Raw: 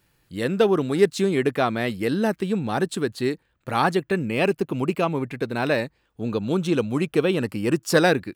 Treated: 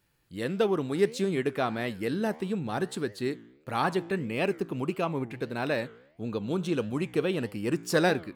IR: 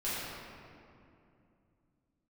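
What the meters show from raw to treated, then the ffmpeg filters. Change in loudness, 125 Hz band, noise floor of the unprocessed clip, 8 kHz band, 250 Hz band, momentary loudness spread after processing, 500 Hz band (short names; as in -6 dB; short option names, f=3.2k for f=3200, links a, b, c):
-6.5 dB, -6.5 dB, -68 dBFS, -6.5 dB, -6.5 dB, 8 LU, -6.5 dB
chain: -af "flanger=delay=9.4:depth=8.8:regen=88:speed=1.6:shape=triangular,volume=-2dB"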